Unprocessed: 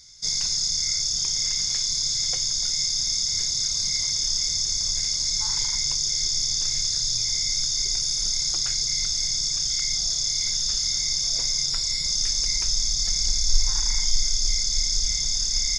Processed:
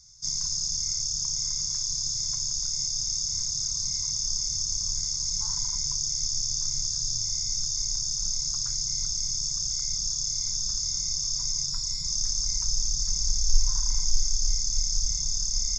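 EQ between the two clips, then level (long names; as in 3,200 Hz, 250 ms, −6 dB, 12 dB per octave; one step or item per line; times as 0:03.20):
drawn EQ curve 160 Hz 0 dB, 310 Hz −20 dB, 580 Hz −30 dB, 1,000 Hz −2 dB, 2,700 Hz −24 dB, 6,200 Hz −1 dB, 9,000 Hz −15 dB
0.0 dB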